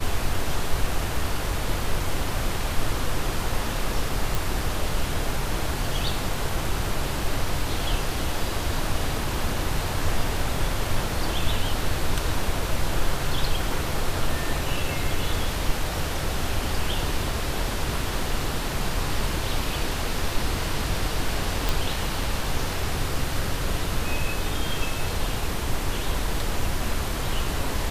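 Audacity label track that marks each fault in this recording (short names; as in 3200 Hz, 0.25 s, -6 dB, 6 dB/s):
4.350000	4.350000	pop
21.690000	21.690000	pop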